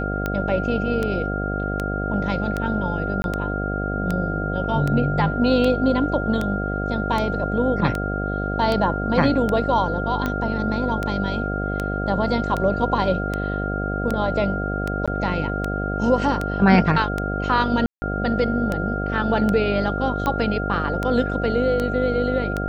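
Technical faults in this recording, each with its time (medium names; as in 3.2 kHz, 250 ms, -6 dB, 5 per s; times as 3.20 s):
buzz 50 Hz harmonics 15 -26 dBFS
tick 78 rpm -11 dBFS
whine 1.4 kHz -28 dBFS
3.22–3.24 s: dropout 21 ms
15.06–15.08 s: dropout 16 ms
17.86–18.02 s: dropout 160 ms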